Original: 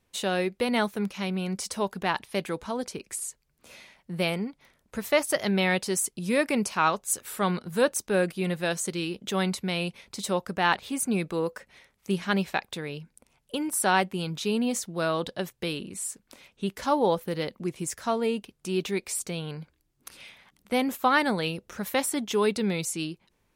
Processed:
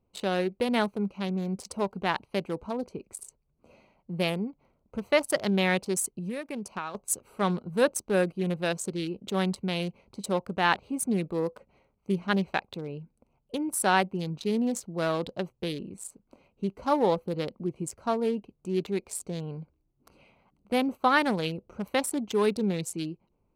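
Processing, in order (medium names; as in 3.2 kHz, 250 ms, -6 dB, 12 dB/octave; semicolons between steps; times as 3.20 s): local Wiener filter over 25 samples; 6.07–6.95 s: compression 16:1, threshold -31 dBFS, peak gain reduction 14 dB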